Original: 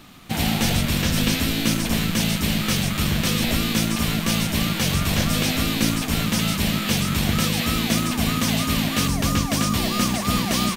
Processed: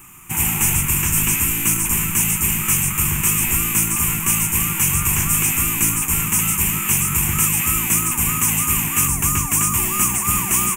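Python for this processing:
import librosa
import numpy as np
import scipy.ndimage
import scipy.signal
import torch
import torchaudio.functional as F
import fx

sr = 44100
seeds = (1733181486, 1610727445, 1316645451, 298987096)

y = fx.curve_eq(x, sr, hz=(150.0, 240.0, 380.0, 550.0, 950.0, 1700.0, 2600.0, 4200.0, 7100.0), db=(0, -10, 0, -24, 5, -2, 5, -24, 14))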